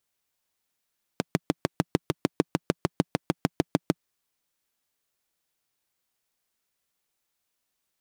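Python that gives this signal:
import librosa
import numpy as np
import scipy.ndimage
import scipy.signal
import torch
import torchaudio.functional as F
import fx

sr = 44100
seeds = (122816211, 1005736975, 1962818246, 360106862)

y = fx.engine_single(sr, seeds[0], length_s=2.8, rpm=800, resonances_hz=(170.0, 290.0))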